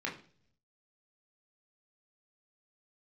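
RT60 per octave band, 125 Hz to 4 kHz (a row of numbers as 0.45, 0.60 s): 1.1, 0.75, 0.55, 0.40, 0.40, 0.50 s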